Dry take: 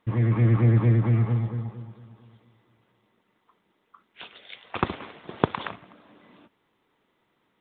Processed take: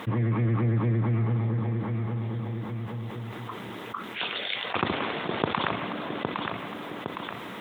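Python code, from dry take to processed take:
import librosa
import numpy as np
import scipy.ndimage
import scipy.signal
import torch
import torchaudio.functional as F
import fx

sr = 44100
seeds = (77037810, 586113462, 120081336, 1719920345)

y = scipy.signal.sosfilt(scipy.signal.butter(2, 100.0, 'highpass', fs=sr, output='sos'), x)
y = fx.echo_feedback(y, sr, ms=811, feedback_pct=20, wet_db=-14.0)
y = fx.env_flatten(y, sr, amount_pct=70)
y = F.gain(torch.from_numpy(y), -5.5).numpy()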